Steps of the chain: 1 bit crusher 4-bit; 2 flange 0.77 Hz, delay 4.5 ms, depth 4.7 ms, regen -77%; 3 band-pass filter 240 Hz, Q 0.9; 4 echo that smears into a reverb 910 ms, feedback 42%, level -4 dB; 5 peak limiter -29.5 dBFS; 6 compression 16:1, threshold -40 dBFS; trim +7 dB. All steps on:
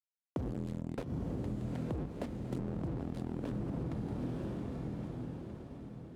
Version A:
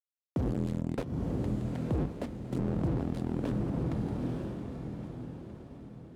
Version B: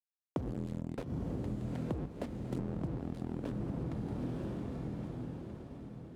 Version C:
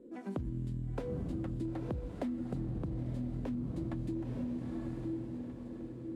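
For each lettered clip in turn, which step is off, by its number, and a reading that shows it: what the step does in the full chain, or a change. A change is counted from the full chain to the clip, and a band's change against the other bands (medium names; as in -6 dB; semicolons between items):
6, mean gain reduction 3.5 dB; 5, crest factor change +2.0 dB; 1, distortion -1 dB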